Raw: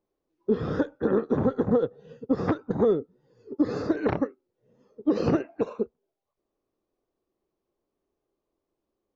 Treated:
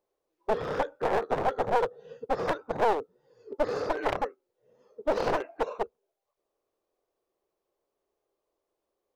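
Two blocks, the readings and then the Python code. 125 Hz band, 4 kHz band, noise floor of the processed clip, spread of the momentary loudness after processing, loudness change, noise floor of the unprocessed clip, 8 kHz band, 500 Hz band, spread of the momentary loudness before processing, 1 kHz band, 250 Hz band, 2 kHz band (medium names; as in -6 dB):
-11.0 dB, +5.0 dB, -84 dBFS, 9 LU, -3.0 dB, -84 dBFS, no reading, -2.5 dB, 9 LU, +8.0 dB, -14.0 dB, +4.5 dB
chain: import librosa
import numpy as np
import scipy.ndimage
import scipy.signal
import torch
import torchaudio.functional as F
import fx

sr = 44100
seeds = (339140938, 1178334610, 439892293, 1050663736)

y = np.minimum(x, 2.0 * 10.0 ** (-26.5 / 20.0) - x)
y = fx.low_shelf_res(y, sr, hz=360.0, db=-9.0, q=1.5)
y = y * librosa.db_to_amplitude(1.0)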